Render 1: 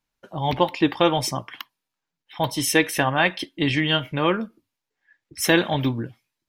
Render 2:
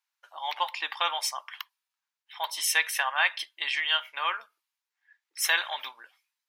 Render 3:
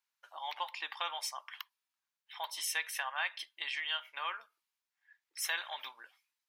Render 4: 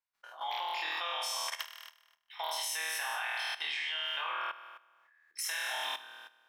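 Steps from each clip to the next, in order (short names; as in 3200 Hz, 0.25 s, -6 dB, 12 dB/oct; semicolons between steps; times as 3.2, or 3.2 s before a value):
HPF 910 Hz 24 dB/oct; gain -2.5 dB
compressor 1.5:1, threshold -42 dBFS, peak gain reduction 8.5 dB; gain -3 dB
flutter echo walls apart 4.3 m, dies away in 1.1 s; level quantiser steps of 14 dB; mismatched tape noise reduction decoder only; gain +6 dB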